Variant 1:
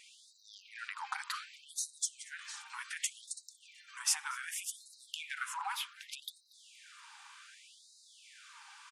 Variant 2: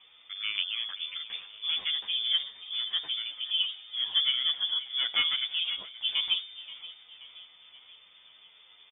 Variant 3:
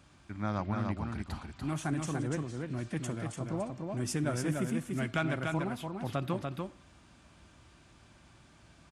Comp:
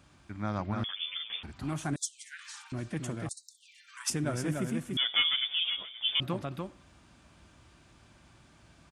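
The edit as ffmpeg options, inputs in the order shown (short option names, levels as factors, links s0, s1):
-filter_complex "[1:a]asplit=2[s0][s1];[0:a]asplit=2[s2][s3];[2:a]asplit=5[s4][s5][s6][s7][s8];[s4]atrim=end=0.842[s9];[s0]atrim=start=0.838:end=1.432[s10];[s5]atrim=start=1.428:end=1.962[s11];[s2]atrim=start=1.958:end=2.722[s12];[s6]atrim=start=2.718:end=3.292[s13];[s3]atrim=start=3.288:end=4.102[s14];[s7]atrim=start=4.098:end=4.972[s15];[s1]atrim=start=4.968:end=6.202[s16];[s8]atrim=start=6.198[s17];[s9][s10]acrossfade=d=0.004:c1=hsin:c2=hsin[s18];[s18][s11]acrossfade=d=0.004:c1=hsin:c2=hsin[s19];[s19][s12]acrossfade=d=0.004:c1=hsin:c2=hsin[s20];[s20][s13]acrossfade=d=0.004:c1=hsin:c2=hsin[s21];[s21][s14]acrossfade=d=0.004:c1=hsin:c2=hsin[s22];[s22][s15]acrossfade=d=0.004:c1=hsin:c2=hsin[s23];[s23][s16]acrossfade=d=0.004:c1=hsin:c2=hsin[s24];[s24][s17]acrossfade=d=0.004:c1=hsin:c2=hsin"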